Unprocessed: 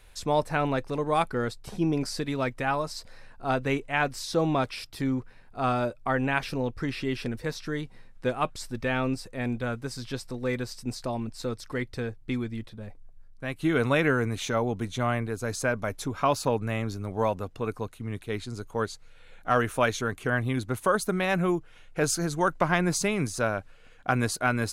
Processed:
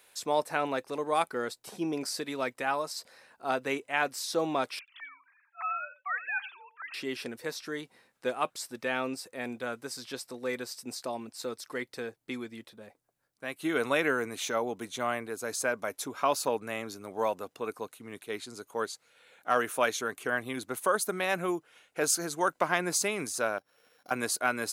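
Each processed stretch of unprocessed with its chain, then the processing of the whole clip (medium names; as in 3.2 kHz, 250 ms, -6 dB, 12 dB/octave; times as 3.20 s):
4.79–6.94 s: formants replaced by sine waves + high-pass 1.1 kHz 24 dB/octave + delay 88 ms -15 dB
23.58–24.11 s: sorted samples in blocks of 8 samples + treble shelf 3.6 kHz -9.5 dB + compression 3:1, threshold -50 dBFS
whole clip: high-pass 320 Hz 12 dB/octave; treble shelf 8.6 kHz +10 dB; trim -2.5 dB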